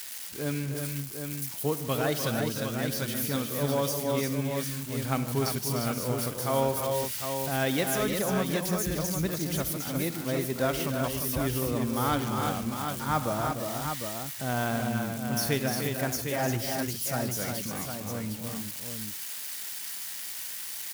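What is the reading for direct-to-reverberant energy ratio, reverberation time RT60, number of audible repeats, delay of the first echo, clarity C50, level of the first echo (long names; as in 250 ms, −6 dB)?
no reverb audible, no reverb audible, 6, 65 ms, no reverb audible, −17.5 dB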